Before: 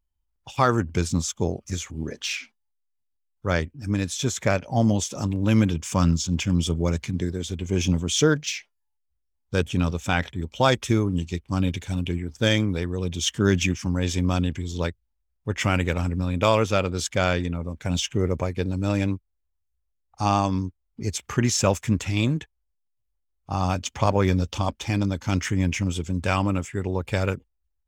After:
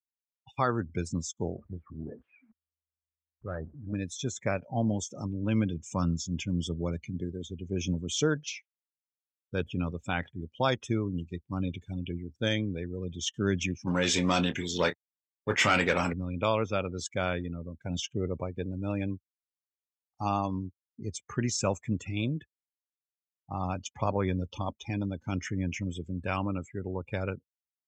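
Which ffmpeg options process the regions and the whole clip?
ffmpeg -i in.wav -filter_complex "[0:a]asettb=1/sr,asplit=3[link_01][link_02][link_03];[link_01]atrim=end=1.564[link_04];[link_02]atrim=start=1.56:end=3.93,asetpts=PTS-STARTPTS,afade=type=in:duration=0.004:curve=qsin,afade=type=out:start_time=2.366:duration=0.004:curve=qsin,aeval=exprs='val(0)+0.5*0.02*sgn(val(0))':channel_layout=same,lowpass=frequency=1600:width=0.5412,lowpass=frequency=1600:width=1.3066,aeval=exprs='(tanh(12.6*val(0)+0.5)-tanh(0.5))/12.6':channel_layout=same[link_05];[link_03]atrim=start=3.926[link_06];[link_04][link_05]acrossfade=duration=0.004:curve1=hsin:curve2=qsin[link_07];[link_07][link_06]acrossfade=duration=0.004:curve1=qsin:curve2=hsin,asettb=1/sr,asplit=3[link_08][link_09][link_10];[link_08]atrim=end=13.874[link_11];[link_09]atrim=start=13.87:end=16.13,asetpts=PTS-STARTPTS,afade=type=in:duration=0.004:curve=qsin,afade=type=out:start_time=2.256:duration=0.004:curve=qsin,asplit=2[link_12][link_13];[link_13]highpass=frequency=720:poles=1,volume=22dB,asoftclip=type=tanh:threshold=-6dB[link_14];[link_12][link_14]amix=inputs=2:normalize=0,lowpass=frequency=5500:poles=1,volume=-6dB,acrusher=bits=4:mix=0:aa=0.5,asplit=2[link_15][link_16];[link_16]adelay=28,volume=-10dB[link_17];[link_15][link_17]amix=inputs=2:normalize=0,atrim=end_sample=99666[link_18];[link_10]atrim=start=16.126[link_19];[link_11][link_18]acrossfade=duration=0.004:curve1=hsin:curve2=qsin[link_20];[link_20][link_19]acrossfade=duration=0.004:curve1=qsin:curve2=hsin,afftdn=noise_reduction=26:noise_floor=-33,highpass=87,volume=-7.5dB" out.wav

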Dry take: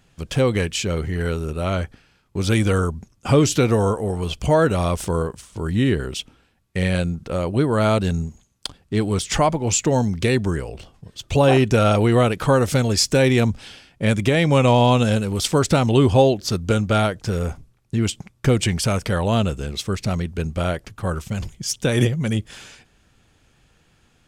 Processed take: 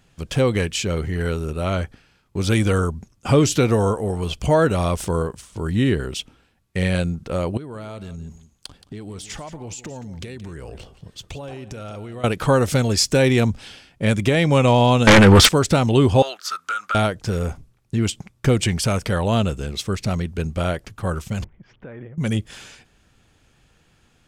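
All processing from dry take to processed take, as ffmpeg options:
ffmpeg -i in.wav -filter_complex "[0:a]asettb=1/sr,asplit=3[link_01][link_02][link_03];[link_01]atrim=end=7.574[link_04];[link_02]atrim=start=7.57:end=12.24,asetpts=PTS-STARTPTS,afade=type=in:duration=0.004:curve=qsin,afade=type=out:start_time=4.666:duration=0.004:curve=qsin,acompressor=threshold=-30dB:ratio=20:attack=3.2:release=140:knee=1:detection=peak,aecho=1:1:174:0.188,atrim=end_sample=205947[link_05];[link_03]atrim=start=12.236[link_06];[link_04][link_05]acrossfade=duration=0.004:curve1=hsin:curve2=qsin[link_07];[link_07][link_06]acrossfade=duration=0.004:curve1=qsin:curve2=hsin,asettb=1/sr,asplit=3[link_08][link_09][link_10];[link_08]atrim=end=15.074[link_11];[link_09]atrim=start=15.07:end=15.49,asetpts=PTS-STARTPTS,afade=type=in:duration=0.004:curve=qsin,afade=type=out:start_time=0.416:duration=0.004:curve=qsin,lowpass=frequency=2900:poles=1,equalizer=frequency=1500:width_type=o:width=1.5:gain=9.5,aeval=exprs='0.531*sin(PI/2*4.47*val(0)/0.531)':channel_layout=same[link_12];[link_10]atrim=start=15.486[link_13];[link_11][link_12]acrossfade=duration=0.004:curve1=hsin:curve2=qsin[link_14];[link_14][link_13]acrossfade=duration=0.004:curve1=qsin:curve2=hsin,asettb=1/sr,asplit=3[link_15][link_16][link_17];[link_15]atrim=end=16.224[link_18];[link_16]atrim=start=16.22:end=16.95,asetpts=PTS-STARTPTS,afade=type=in:duration=0.004:curve=qsin,afade=type=out:start_time=0.726:duration=0.004:curve=qsin,highpass=frequency=1300:width_type=q:width=8.3,acompressor=threshold=-24dB:ratio=3:attack=3.2:release=140:knee=1:detection=peak[link_19];[link_17]atrim=start=16.946[link_20];[link_18][link_19]acrossfade=duration=0.004:curve1=hsin:curve2=qsin[link_21];[link_21][link_20]acrossfade=duration=0.004:curve1=qsin:curve2=hsin,asettb=1/sr,asplit=3[link_22][link_23][link_24];[link_22]atrim=end=21.444[link_25];[link_23]atrim=start=21.44:end=22.18,asetpts=PTS-STARTPTS,afade=type=in:duration=0.004:curve=qsin,afade=type=out:start_time=0.736:duration=0.004:curve=qsin,lowpass=frequency=1900:width=0.5412,lowpass=frequency=1900:width=1.3066,acompressor=threshold=-41dB:ratio=2.5:attack=3.2:release=140:knee=1:detection=peak,equalizer=frequency=85:width=0.51:gain=-4.5[link_26];[link_24]atrim=start=22.176[link_27];[link_25][link_26]acrossfade=duration=0.004:curve1=hsin:curve2=qsin[link_28];[link_28][link_27]acrossfade=duration=0.004:curve1=qsin:curve2=hsin" out.wav

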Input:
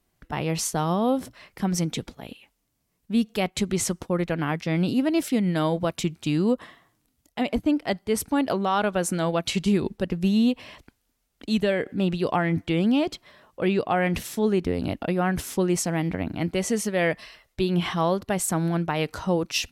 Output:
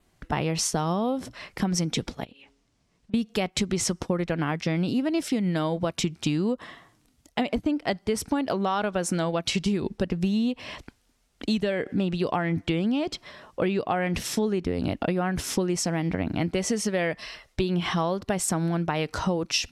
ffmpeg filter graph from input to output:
ffmpeg -i in.wav -filter_complex "[0:a]asettb=1/sr,asplit=3[link_01][link_02][link_03];[link_01]atrim=end=2.244[link_04];[link_02]atrim=start=2.24:end=3.14,asetpts=PTS-STARTPTS,afade=type=in:duration=0.004:curve=qsin,afade=type=out:start_time=0.896:duration=0.004:curve=qsin,lowpass=6800,bandreject=frequency=138.3:width_type=h:width=4,bandreject=frequency=276.6:width_type=h:width=4,bandreject=frequency=414.9:width_type=h:width=4,bandreject=frequency=553.2:width_type=h:width=4,acompressor=threshold=-53dB:ratio=10:attack=3.2:release=140:knee=1:detection=peak[link_05];[link_03]atrim=start=3.136[link_06];[link_04][link_05]acrossfade=duration=0.004:curve1=hsin:curve2=qsin[link_07];[link_07][link_06]acrossfade=duration=0.004:curve1=qsin:curve2=hsin,lowpass=9300,adynamicequalizer=threshold=0.00251:dfrequency=5400:dqfactor=6.3:tfrequency=5400:tqfactor=6.3:attack=5:release=100:ratio=0.375:range=3:mode=boostabove:tftype=bell,acompressor=threshold=-29dB:ratio=10,volume=7dB" out.wav

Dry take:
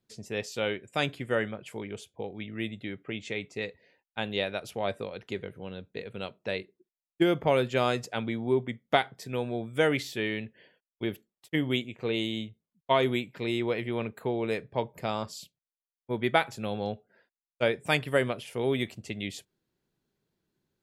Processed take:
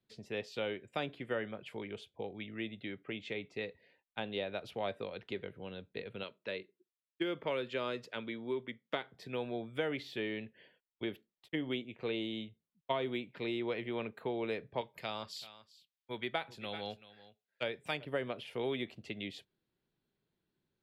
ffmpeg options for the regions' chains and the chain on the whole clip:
ffmpeg -i in.wav -filter_complex "[0:a]asettb=1/sr,asplit=3[link_01][link_02][link_03];[link_01]atrim=end=6.234[link_04];[link_02]atrim=start=6.23:end=9.14,asetpts=PTS-STARTPTS,afade=type=in:duration=0.004:curve=qsin,afade=type=out:start_time=2.906:duration=0.004:curve=qsin,highpass=frequency=340:poles=1,equalizer=frequency=750:width_type=o:width=0.24:gain=-15[link_05];[link_03]atrim=start=9.136[link_06];[link_04][link_05]acrossfade=duration=0.004:curve1=hsin:curve2=qsin[link_07];[link_07][link_06]acrossfade=duration=0.004:curve1=qsin:curve2=hsin,asettb=1/sr,asplit=3[link_08][link_09][link_10];[link_08]atrim=end=14.814[link_11];[link_09]atrim=start=14.81:end=18.05,asetpts=PTS-STARTPTS,afade=type=in:duration=0.004:curve=qsin,afade=type=out:start_time=3.236:duration=0.004:curve=qsin,tiltshelf=frequency=1300:gain=-8,aecho=1:1:385:0.119,atrim=end_sample=142884[link_12];[link_10]atrim=start=18.046[link_13];[link_11][link_12]acrossfade=duration=0.004:curve1=hsin:curve2=qsin[link_14];[link_14][link_13]acrossfade=duration=0.004:curve1=qsin:curve2=hsin,highshelf=frequency=5100:width_type=q:width=1.5:gain=-10,acrossover=split=210|950[link_15][link_16][link_17];[link_15]acompressor=threshold=-47dB:ratio=4[link_18];[link_16]acompressor=threshold=-29dB:ratio=4[link_19];[link_17]acompressor=threshold=-36dB:ratio=4[link_20];[link_18][link_19][link_20]amix=inputs=3:normalize=0,volume=-4.5dB" out.wav

